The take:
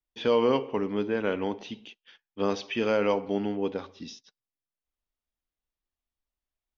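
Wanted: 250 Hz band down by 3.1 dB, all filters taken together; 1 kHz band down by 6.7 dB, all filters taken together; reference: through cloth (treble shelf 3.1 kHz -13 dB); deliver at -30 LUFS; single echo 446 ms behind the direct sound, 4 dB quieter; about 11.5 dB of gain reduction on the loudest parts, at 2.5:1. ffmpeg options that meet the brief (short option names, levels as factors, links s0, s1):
-af "equalizer=f=250:t=o:g=-3.5,equalizer=f=1000:t=o:g=-6.5,acompressor=threshold=0.0112:ratio=2.5,highshelf=f=3100:g=-13,aecho=1:1:446:0.631,volume=3.16"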